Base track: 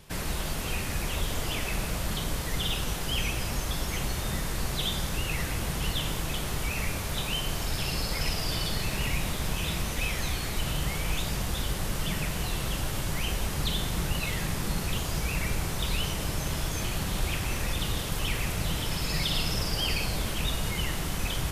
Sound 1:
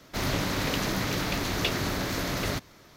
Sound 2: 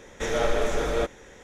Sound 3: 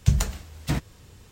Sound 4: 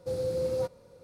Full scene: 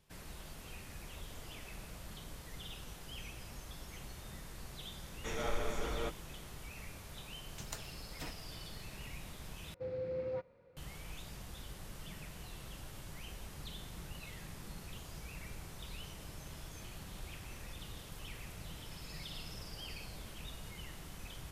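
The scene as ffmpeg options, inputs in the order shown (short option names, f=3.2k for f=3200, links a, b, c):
-filter_complex "[0:a]volume=-18dB[a];[2:a]aecho=1:1:0.9:0.34[b];[3:a]highpass=350[c];[4:a]lowpass=f=2.2k:t=q:w=2.5[d];[a]asplit=2[e][f];[e]atrim=end=9.744[g];[d]atrim=end=1.03,asetpts=PTS-STARTPTS,volume=-9.5dB[h];[f]atrim=start=10.766[i];[b]atrim=end=1.43,asetpts=PTS-STARTPTS,volume=-12dB,afade=t=in:d=0.004:c=hsin,afade=t=out:st=1.426:d=0.004:c=hsin,adelay=5040[j];[c]atrim=end=1.31,asetpts=PTS-STARTPTS,volume=-14.5dB,afade=t=in:d=0.004:c=hsin,afade=t=out:st=1.306:d=0.004:c=hsin,adelay=7520[k];[g][h]acrossfade=d=0.004:c1=hsin:c2=hsin[l];[l][i]acrossfade=d=0.004:c1=hsin:c2=hsin[m];[m][j][k]amix=inputs=3:normalize=0"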